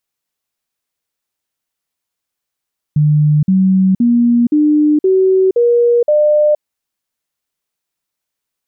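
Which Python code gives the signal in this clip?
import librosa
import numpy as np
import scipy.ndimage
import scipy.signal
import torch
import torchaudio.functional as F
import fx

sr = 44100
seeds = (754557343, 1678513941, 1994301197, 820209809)

y = fx.stepped_sweep(sr, from_hz=150.0, direction='up', per_octave=3, tones=7, dwell_s=0.47, gap_s=0.05, level_db=-7.5)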